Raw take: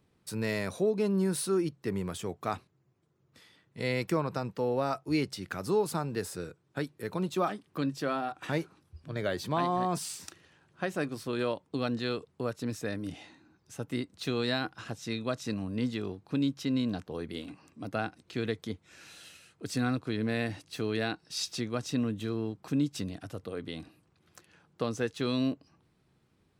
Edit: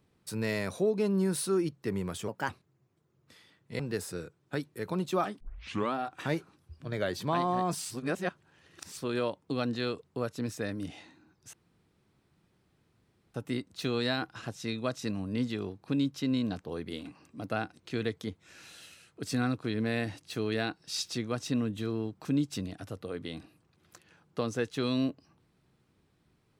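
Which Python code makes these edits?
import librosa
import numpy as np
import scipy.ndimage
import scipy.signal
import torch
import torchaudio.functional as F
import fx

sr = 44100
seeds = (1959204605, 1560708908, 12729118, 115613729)

y = fx.edit(x, sr, fx.speed_span(start_s=2.28, length_s=0.27, speed=1.27),
    fx.cut(start_s=3.85, length_s=2.18),
    fx.tape_start(start_s=7.64, length_s=0.53),
    fx.reverse_span(start_s=10.14, length_s=1.07),
    fx.insert_room_tone(at_s=13.77, length_s=1.81), tone=tone)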